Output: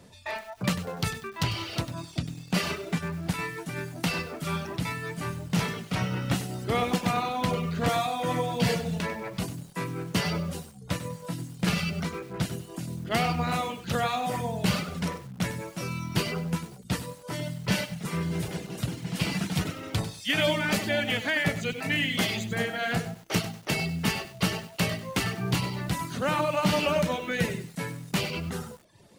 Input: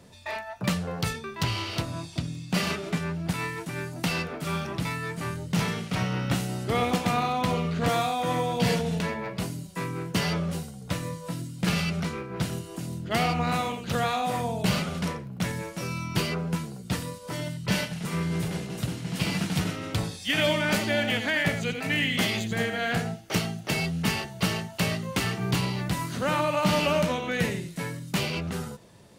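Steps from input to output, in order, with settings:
reverb reduction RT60 0.69 s
feedback echo at a low word length 97 ms, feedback 35%, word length 7 bits, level −12 dB

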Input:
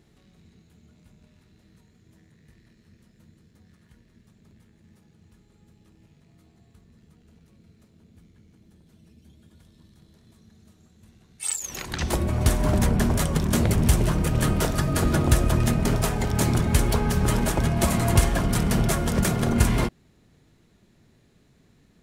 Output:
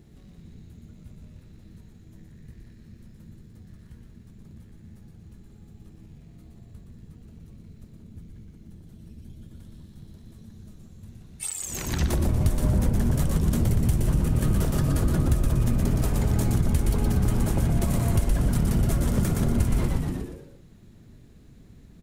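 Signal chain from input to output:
high-shelf EQ 10,000 Hz +8.5 dB
echo with shifted repeats 119 ms, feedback 47%, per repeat −100 Hz, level −4 dB
downward compressor, threshold −27 dBFS, peak gain reduction 15 dB
low-shelf EQ 410 Hz +11.5 dB
level −2 dB

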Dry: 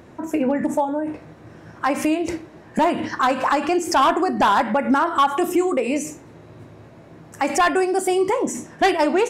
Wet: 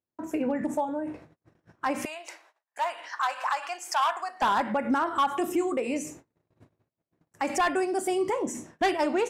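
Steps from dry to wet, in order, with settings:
noise gate −39 dBFS, range −42 dB
0:02.05–0:04.42: high-pass filter 740 Hz 24 dB per octave
level −7.5 dB

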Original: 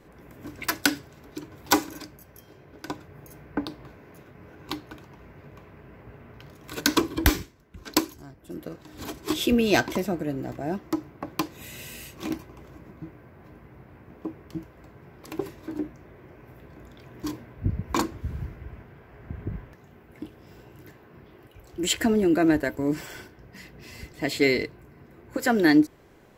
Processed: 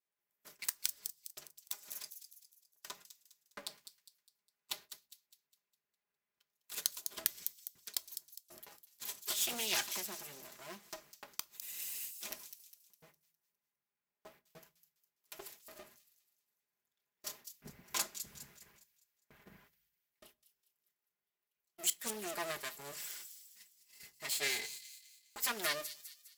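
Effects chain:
lower of the sound and its delayed copy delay 4.9 ms
noise gate −43 dBFS, range −28 dB
high-pass filter 45 Hz
first-order pre-emphasis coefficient 0.97
gate with flip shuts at −17 dBFS, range −24 dB
delay with a high-pass on its return 204 ms, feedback 41%, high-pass 4,500 Hz, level −7.5 dB
on a send at −15.5 dB: convolution reverb RT60 0.30 s, pre-delay 5 ms
on the sum: highs frequency-modulated by the lows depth 0.19 ms
level +2 dB

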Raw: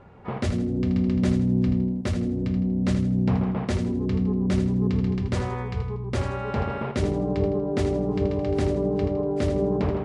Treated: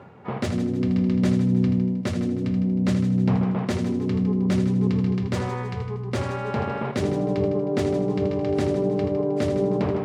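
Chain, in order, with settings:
stylus tracing distortion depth 0.023 ms
high-pass filter 100 Hz 24 dB per octave
reversed playback
upward compression, threshold −34 dBFS
reversed playback
feedback echo with a high-pass in the loop 156 ms, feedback 43%, level −12 dB
level +1.5 dB

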